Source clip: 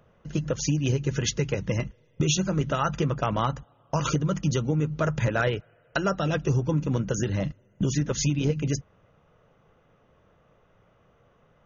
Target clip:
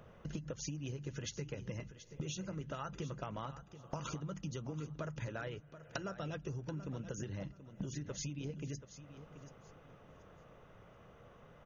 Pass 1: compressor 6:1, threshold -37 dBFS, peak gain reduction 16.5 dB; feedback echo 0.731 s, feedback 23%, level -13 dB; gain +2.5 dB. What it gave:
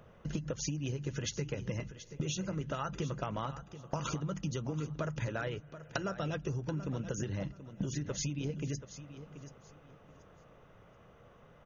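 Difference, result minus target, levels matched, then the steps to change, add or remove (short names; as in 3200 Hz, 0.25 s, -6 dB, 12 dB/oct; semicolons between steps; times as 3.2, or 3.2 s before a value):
compressor: peak gain reduction -6 dB
change: compressor 6:1, threshold -44 dBFS, peak gain reduction 22.5 dB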